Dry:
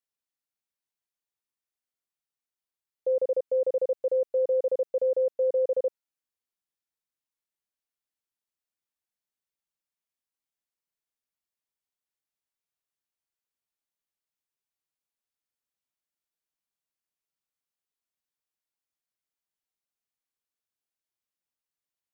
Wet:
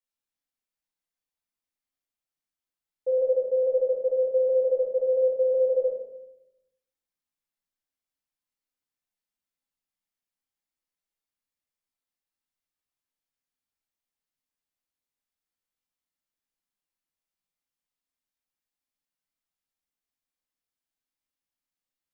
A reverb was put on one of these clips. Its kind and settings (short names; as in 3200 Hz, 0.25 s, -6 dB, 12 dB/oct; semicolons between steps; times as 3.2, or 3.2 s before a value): shoebox room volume 220 m³, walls mixed, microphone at 2.1 m; gain -7 dB